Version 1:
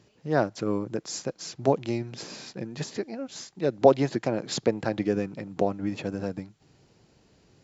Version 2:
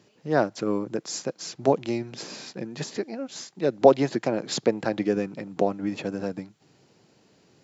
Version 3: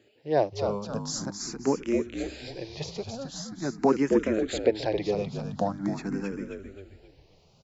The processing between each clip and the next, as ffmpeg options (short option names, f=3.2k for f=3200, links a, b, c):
-af "highpass=150,volume=2dB"
-filter_complex "[0:a]asplit=2[a][b];[b]asplit=5[c][d][e][f][g];[c]adelay=266,afreqshift=-52,volume=-6dB[h];[d]adelay=532,afreqshift=-104,volume=-13.7dB[i];[e]adelay=798,afreqshift=-156,volume=-21.5dB[j];[f]adelay=1064,afreqshift=-208,volume=-29.2dB[k];[g]adelay=1330,afreqshift=-260,volume=-37dB[l];[h][i][j][k][l]amix=inputs=5:normalize=0[m];[a][m]amix=inputs=2:normalize=0,asplit=2[n][o];[o]afreqshift=0.44[p];[n][p]amix=inputs=2:normalize=1"